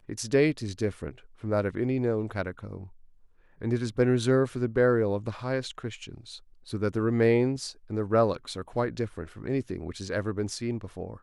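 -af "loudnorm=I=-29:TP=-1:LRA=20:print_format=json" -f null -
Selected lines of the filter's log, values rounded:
"input_i" : "-29.1",
"input_tp" : "-11.4",
"input_lra" : "5.4",
"input_thresh" : "-39.5",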